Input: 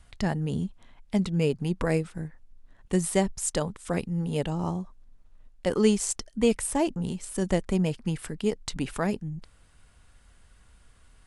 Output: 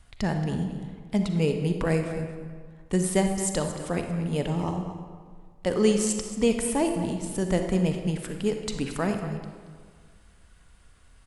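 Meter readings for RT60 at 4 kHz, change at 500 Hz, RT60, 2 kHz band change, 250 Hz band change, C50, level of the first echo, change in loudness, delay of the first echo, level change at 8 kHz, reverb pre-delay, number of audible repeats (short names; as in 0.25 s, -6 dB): 1.1 s, +1.5 dB, 1.8 s, +1.0 dB, +1.5 dB, 5.0 dB, -13.0 dB, +1.0 dB, 0.227 s, +0.5 dB, 36 ms, 1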